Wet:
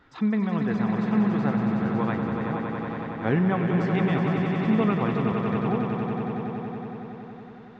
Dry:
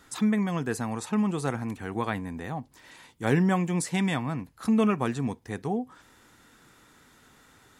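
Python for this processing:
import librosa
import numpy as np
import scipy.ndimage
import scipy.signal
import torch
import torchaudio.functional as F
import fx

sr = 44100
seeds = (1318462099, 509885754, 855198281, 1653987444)

y = fx.vibrato(x, sr, rate_hz=6.3, depth_cents=27.0)
y = scipy.ndimage.gaussian_filter1d(y, 2.5, mode='constant')
y = fx.echo_swell(y, sr, ms=93, loudest=5, wet_db=-7.5)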